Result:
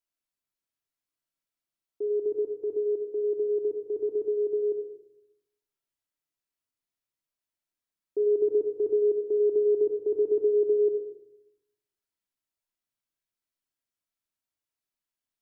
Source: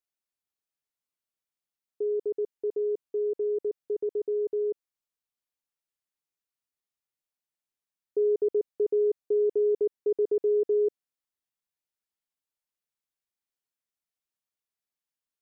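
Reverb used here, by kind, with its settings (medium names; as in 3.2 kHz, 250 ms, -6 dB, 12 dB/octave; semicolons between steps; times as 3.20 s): simulated room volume 2000 m³, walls furnished, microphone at 2.9 m; trim -2.5 dB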